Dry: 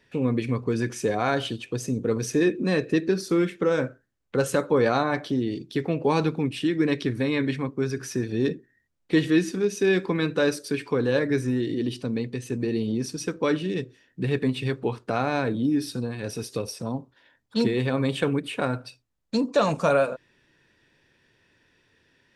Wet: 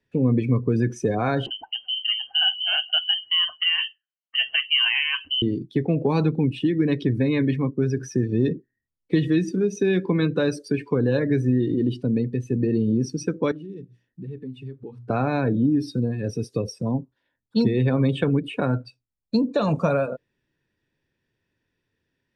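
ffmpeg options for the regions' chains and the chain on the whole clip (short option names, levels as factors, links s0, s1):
-filter_complex "[0:a]asettb=1/sr,asplit=3[s0][s1][s2];[s0]atrim=end=1.464[s3];[s1]atrim=start=1.46:end=5.42,asetpts=PTS-STARTPTS,afade=t=in:d=0.004:c=qsin,afade=t=out:st=3.956:d=0.004:c=qsin,highpass=f=160:w=0.5412,highpass=f=160:w=1.3066,lowpass=f=2800:t=q:w=0.5098,lowpass=f=2800:t=q:w=0.6013,lowpass=f=2800:t=q:w=0.9,lowpass=f=2800:t=q:w=2.563,afreqshift=-3300[s4];[s2]atrim=start=5.416[s5];[s3][s4]acrossfade=d=0.004:c1=hsin:c2=qsin[s6];[s6][s5]acrossfade=d=0.004:c1=qsin:c2=hsin,asettb=1/sr,asplit=3[s7][s8][s9];[s7]atrim=end=13.514[s10];[s8]atrim=start=13.51:end=15.1,asetpts=PTS-STARTPTS,afade=t=in:d=0.004:c=qsin,afade=t=out:st=1.586:d=0.004:c=qsin,bandreject=f=60:t=h:w=6,bandreject=f=120:t=h:w=6,bandreject=f=180:t=h:w=6,bandreject=f=240:t=h:w=6,bandreject=f=300:t=h:w=6,acompressor=threshold=0.00631:ratio=2.5:attack=3.2:release=140:knee=1:detection=peak[s11];[s9]atrim=start=15.096[s12];[s10][s11]acrossfade=d=0.004:c1=hsin:c2=qsin[s13];[s13][s12]acrossfade=d=0.004:c1=qsin:c2=hsin,afftdn=nr=16:nf=-35,lowshelf=f=390:g=8,acrossover=split=180|3000[s14][s15][s16];[s15]acompressor=threshold=0.112:ratio=6[s17];[s14][s17][s16]amix=inputs=3:normalize=0"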